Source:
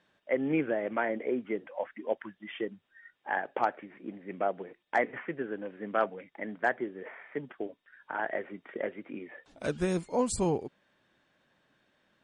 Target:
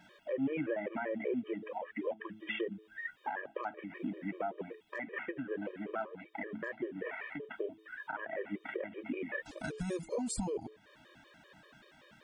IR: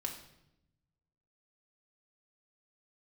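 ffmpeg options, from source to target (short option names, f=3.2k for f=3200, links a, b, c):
-filter_complex "[0:a]asplit=3[a][b][c];[a]afade=t=out:st=5.24:d=0.02[d];[b]flanger=delay=1.8:depth=9.4:regen=73:speed=1.9:shape=sinusoidal,afade=t=in:st=5.24:d=0.02,afade=t=out:st=7.52:d=0.02[e];[c]afade=t=in:st=7.52:d=0.02[f];[d][e][f]amix=inputs=3:normalize=0,acompressor=threshold=-47dB:ratio=2.5,bandreject=f=108.2:t=h:w=4,bandreject=f=216.4:t=h:w=4,bandreject=f=324.6:t=h:w=4,bandreject=f=432.8:t=h:w=4,alimiter=level_in=14dB:limit=-24dB:level=0:latency=1:release=86,volume=-14dB,afftfilt=real='re*gt(sin(2*PI*5.2*pts/sr)*(1-2*mod(floor(b*sr/1024/320),2)),0)':imag='im*gt(sin(2*PI*5.2*pts/sr)*(1-2*mod(floor(b*sr/1024/320),2)),0)':win_size=1024:overlap=0.75,volume=14dB"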